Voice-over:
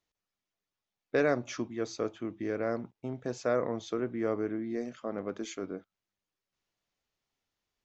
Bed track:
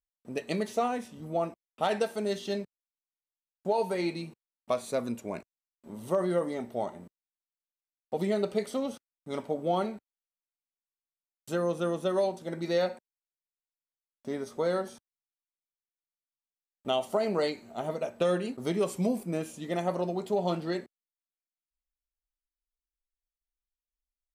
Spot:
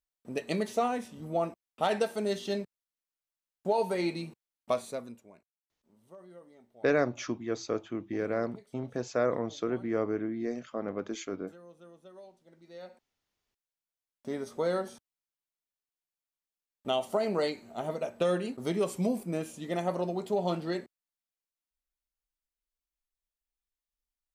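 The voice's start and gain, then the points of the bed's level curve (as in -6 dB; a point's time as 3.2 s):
5.70 s, +1.0 dB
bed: 4.77 s 0 dB
5.42 s -23.5 dB
12.67 s -23.5 dB
13.34 s -1 dB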